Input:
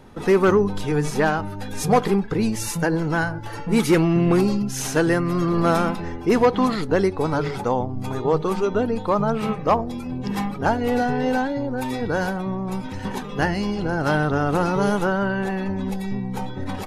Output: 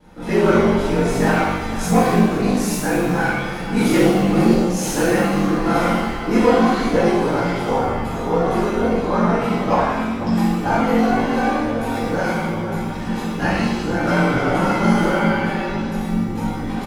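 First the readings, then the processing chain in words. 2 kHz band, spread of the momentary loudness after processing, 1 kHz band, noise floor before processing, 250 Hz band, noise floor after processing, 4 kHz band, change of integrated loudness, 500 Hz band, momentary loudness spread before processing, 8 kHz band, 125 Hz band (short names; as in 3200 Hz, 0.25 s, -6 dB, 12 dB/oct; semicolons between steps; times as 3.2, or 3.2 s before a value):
+4.0 dB, 7 LU, +4.0 dB, -32 dBFS, +4.5 dB, -25 dBFS, +4.5 dB, +3.5 dB, +2.5 dB, 10 LU, +3.0 dB, +2.5 dB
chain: outdoor echo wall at 85 m, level -12 dB; ring modulator 23 Hz; shimmer reverb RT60 1 s, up +7 st, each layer -8 dB, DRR -11.5 dB; gain -6.5 dB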